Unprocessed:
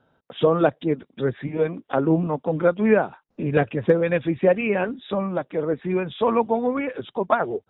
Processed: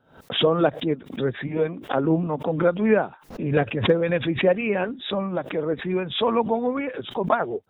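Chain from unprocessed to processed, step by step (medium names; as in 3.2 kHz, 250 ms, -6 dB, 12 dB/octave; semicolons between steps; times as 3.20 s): swell ahead of each attack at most 120 dB/s; trim -1.5 dB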